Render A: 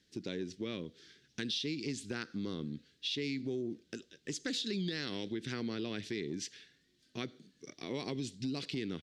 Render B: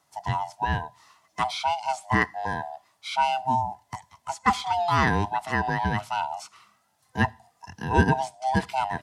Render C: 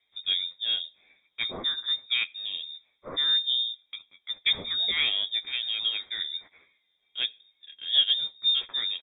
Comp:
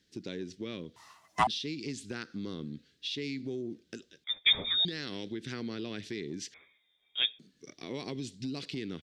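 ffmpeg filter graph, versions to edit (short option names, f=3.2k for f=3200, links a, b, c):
-filter_complex "[2:a]asplit=2[a][b];[0:a]asplit=4[c][d][e][f];[c]atrim=end=0.962[g];[1:a]atrim=start=0.958:end=1.472[h];[d]atrim=start=1.468:end=4.242[i];[a]atrim=start=4.238:end=4.852[j];[e]atrim=start=4.848:end=6.542[k];[b]atrim=start=6.538:end=7.392[l];[f]atrim=start=7.388[m];[g][h]acrossfade=d=0.004:c1=hsin:c2=hsin[n];[n][i]acrossfade=d=0.004:c1=hsin:c2=hsin[o];[o][j]acrossfade=d=0.004:c1=hsin:c2=hsin[p];[p][k]acrossfade=d=0.004:c1=hsin:c2=hsin[q];[q][l]acrossfade=d=0.004:c1=hsin:c2=hsin[r];[r][m]acrossfade=d=0.004:c1=hsin:c2=hsin"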